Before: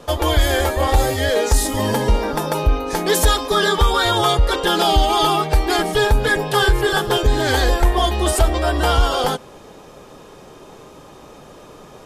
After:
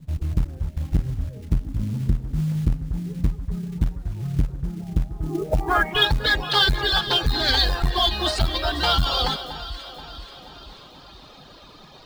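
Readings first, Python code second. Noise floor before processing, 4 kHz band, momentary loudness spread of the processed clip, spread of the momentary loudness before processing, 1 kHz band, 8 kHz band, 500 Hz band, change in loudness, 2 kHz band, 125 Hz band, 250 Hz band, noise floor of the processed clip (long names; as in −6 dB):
−43 dBFS, −0.5 dB, 15 LU, 4 LU, −9.0 dB, −16.0 dB, −12.5 dB, −5.5 dB, −4.5 dB, −3.0 dB, −5.5 dB, −47 dBFS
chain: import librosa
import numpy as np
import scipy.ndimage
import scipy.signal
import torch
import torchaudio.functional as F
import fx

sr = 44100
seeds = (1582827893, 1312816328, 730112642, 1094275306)

p1 = fx.dereverb_blind(x, sr, rt60_s=1.6)
p2 = fx.peak_eq(p1, sr, hz=450.0, db=-7.5, octaves=0.69)
p3 = fx.rider(p2, sr, range_db=4, speed_s=2.0)
p4 = p2 + (p3 * 10.0 ** (-2.5 / 20.0))
p5 = fx.filter_sweep_lowpass(p4, sr, from_hz=150.0, to_hz=4200.0, start_s=5.14, end_s=6.09, q=5.4)
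p6 = fx.quant_companded(p5, sr, bits=6)
p7 = p6 + fx.echo_alternate(p6, sr, ms=240, hz=1700.0, feedback_pct=73, wet_db=-10.5, dry=0)
p8 = fx.transformer_sat(p7, sr, knee_hz=130.0)
y = p8 * 10.0 ** (-8.0 / 20.0)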